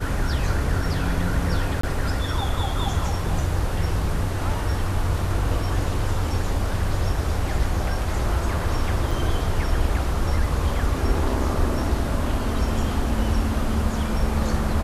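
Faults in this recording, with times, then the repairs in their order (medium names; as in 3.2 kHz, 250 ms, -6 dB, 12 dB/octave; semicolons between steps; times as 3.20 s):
1.81–1.83 s: dropout 24 ms
9.11 s: dropout 4.1 ms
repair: interpolate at 1.81 s, 24 ms; interpolate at 9.11 s, 4.1 ms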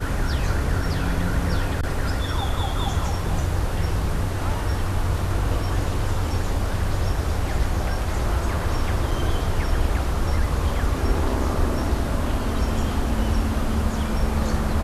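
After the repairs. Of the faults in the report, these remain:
nothing left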